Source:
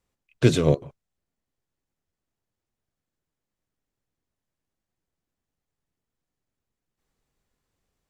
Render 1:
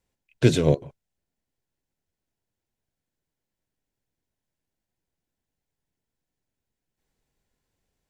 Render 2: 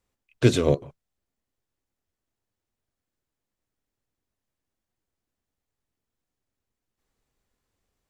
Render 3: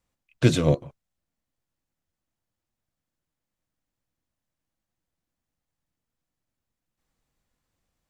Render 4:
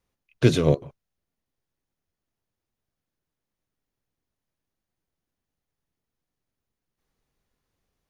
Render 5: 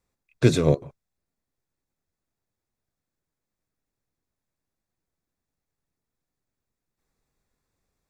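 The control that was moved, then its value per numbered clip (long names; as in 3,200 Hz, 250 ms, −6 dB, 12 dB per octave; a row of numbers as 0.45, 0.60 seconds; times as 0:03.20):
notch filter, centre frequency: 1,200, 160, 410, 7,700, 3,000 Hertz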